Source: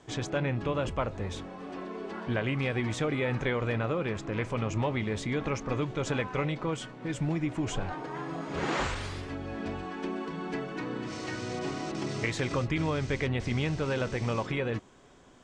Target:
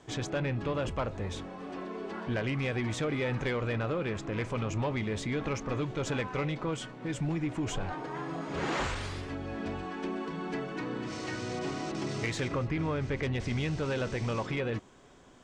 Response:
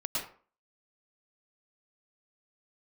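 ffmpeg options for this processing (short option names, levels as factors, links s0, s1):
-filter_complex "[0:a]asettb=1/sr,asplit=3[s0][s1][s2];[s0]atrim=end=12.484[s3];[s1]atrim=start=12.48:end=13.23,asetpts=PTS-STARTPTS,afade=t=in:d=0.004:c=qsin,afade=t=out:st=0.746:d=0.004:c=qsin,acrossover=split=2600[s4][s5];[s5]acompressor=threshold=0.00158:ratio=4:attack=1:release=60[s6];[s4][s6]amix=inputs=2:normalize=0[s7];[s2]atrim=start=13.226[s8];[s3][s7]acrossfade=d=0.004:c1=hsin:c2=qsin[s9];[s9][s8]acrossfade=d=0.004:c1=qsin:c2=hsin,asoftclip=type=tanh:threshold=0.0668"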